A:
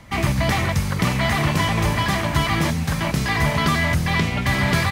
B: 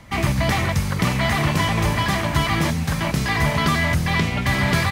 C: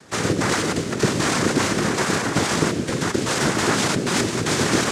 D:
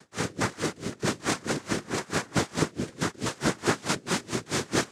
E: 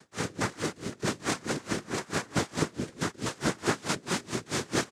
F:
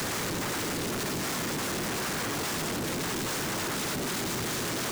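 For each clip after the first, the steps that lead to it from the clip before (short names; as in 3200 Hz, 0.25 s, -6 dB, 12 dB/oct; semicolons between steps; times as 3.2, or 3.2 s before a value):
nothing audible
noise vocoder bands 3
dB-linear tremolo 4.6 Hz, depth 27 dB; gain -2.5 dB
echo 0.171 s -22.5 dB; gain -2.5 dB
infinite clipping; gain +1 dB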